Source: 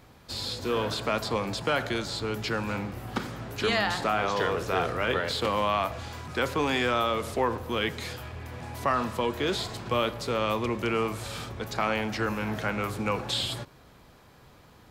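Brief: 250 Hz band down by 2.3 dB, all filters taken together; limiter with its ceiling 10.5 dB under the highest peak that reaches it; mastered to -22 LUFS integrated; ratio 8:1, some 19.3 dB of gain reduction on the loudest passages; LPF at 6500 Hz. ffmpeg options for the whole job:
-af "lowpass=6.5k,equalizer=f=250:t=o:g=-3,acompressor=threshold=-43dB:ratio=8,volume=26dB,alimiter=limit=-12dB:level=0:latency=1"

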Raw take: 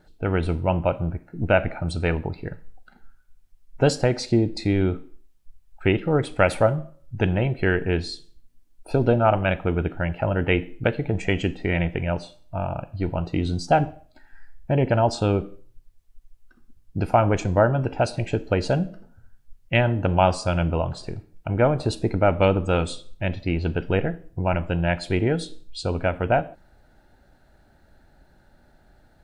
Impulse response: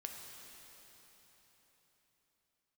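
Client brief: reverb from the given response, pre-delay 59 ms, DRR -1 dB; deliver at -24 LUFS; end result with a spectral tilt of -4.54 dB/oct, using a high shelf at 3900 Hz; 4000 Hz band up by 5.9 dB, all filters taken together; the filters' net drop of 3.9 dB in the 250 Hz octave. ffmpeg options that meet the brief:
-filter_complex "[0:a]equalizer=f=250:t=o:g=-6,highshelf=f=3.9k:g=3.5,equalizer=f=4k:t=o:g=5.5,asplit=2[a][b];[1:a]atrim=start_sample=2205,adelay=59[c];[b][c]afir=irnorm=-1:irlink=0,volume=3.5dB[d];[a][d]amix=inputs=2:normalize=0,volume=-3dB"

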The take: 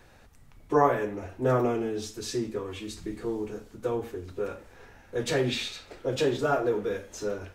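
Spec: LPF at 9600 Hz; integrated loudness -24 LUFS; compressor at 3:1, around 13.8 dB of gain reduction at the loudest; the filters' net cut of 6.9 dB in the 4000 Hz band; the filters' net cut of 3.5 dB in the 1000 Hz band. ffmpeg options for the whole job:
-af "lowpass=9.6k,equalizer=f=1k:t=o:g=-4.5,equalizer=f=4k:t=o:g=-8,acompressor=threshold=-37dB:ratio=3,volume=16dB"

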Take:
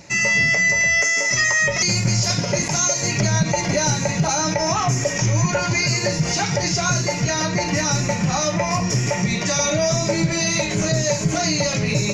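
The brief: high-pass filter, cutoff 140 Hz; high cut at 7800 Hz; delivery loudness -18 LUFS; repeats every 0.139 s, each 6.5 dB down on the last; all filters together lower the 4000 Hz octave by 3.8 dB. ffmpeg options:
-af "highpass=140,lowpass=7.8k,equalizer=f=4k:t=o:g=-4.5,aecho=1:1:139|278|417|556|695|834:0.473|0.222|0.105|0.0491|0.0231|0.0109,volume=2dB"

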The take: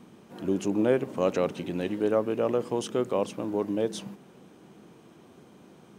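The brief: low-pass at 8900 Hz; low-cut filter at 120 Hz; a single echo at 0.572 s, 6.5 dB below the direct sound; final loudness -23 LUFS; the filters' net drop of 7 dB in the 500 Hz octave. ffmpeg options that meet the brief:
-af "highpass=120,lowpass=8.9k,equalizer=f=500:t=o:g=-8.5,aecho=1:1:572:0.473,volume=9.5dB"

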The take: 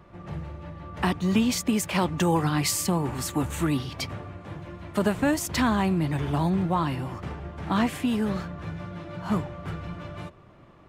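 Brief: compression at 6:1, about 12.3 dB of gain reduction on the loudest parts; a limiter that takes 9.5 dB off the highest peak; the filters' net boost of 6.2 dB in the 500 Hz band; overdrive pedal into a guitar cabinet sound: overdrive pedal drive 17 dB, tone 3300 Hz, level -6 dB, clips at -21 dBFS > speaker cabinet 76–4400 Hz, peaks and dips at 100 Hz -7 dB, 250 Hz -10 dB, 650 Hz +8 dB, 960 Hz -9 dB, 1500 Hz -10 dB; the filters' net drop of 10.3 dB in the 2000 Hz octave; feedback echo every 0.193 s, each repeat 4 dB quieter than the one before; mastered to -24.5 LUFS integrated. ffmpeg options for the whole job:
-filter_complex "[0:a]equalizer=f=500:t=o:g=6,equalizer=f=2k:t=o:g=-9,acompressor=threshold=-30dB:ratio=6,alimiter=level_in=3.5dB:limit=-24dB:level=0:latency=1,volume=-3.5dB,aecho=1:1:193|386|579|772|965|1158|1351|1544|1737:0.631|0.398|0.25|0.158|0.0994|0.0626|0.0394|0.0249|0.0157,asplit=2[a][b];[b]highpass=f=720:p=1,volume=17dB,asoftclip=type=tanh:threshold=-21dB[c];[a][c]amix=inputs=2:normalize=0,lowpass=f=3.3k:p=1,volume=-6dB,highpass=76,equalizer=f=100:t=q:w=4:g=-7,equalizer=f=250:t=q:w=4:g=-10,equalizer=f=650:t=q:w=4:g=8,equalizer=f=960:t=q:w=4:g=-9,equalizer=f=1.5k:t=q:w=4:g=-10,lowpass=f=4.4k:w=0.5412,lowpass=f=4.4k:w=1.3066,volume=7.5dB"

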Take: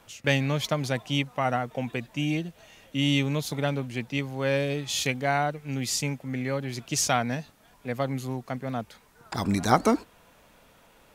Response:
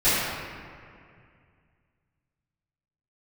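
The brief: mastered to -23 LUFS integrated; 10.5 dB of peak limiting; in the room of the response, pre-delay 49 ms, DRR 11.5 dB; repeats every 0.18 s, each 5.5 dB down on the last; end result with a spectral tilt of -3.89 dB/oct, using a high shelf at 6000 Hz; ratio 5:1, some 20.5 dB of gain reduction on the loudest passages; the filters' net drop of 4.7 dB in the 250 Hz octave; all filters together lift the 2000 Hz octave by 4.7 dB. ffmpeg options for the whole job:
-filter_complex "[0:a]equalizer=f=250:t=o:g=-6,equalizer=f=2k:t=o:g=6.5,highshelf=f=6k:g=-4.5,acompressor=threshold=-39dB:ratio=5,alimiter=level_in=6dB:limit=-24dB:level=0:latency=1,volume=-6dB,aecho=1:1:180|360|540|720|900|1080|1260:0.531|0.281|0.149|0.079|0.0419|0.0222|0.0118,asplit=2[a][b];[1:a]atrim=start_sample=2205,adelay=49[c];[b][c]afir=irnorm=-1:irlink=0,volume=-30dB[d];[a][d]amix=inputs=2:normalize=0,volume=18.5dB"

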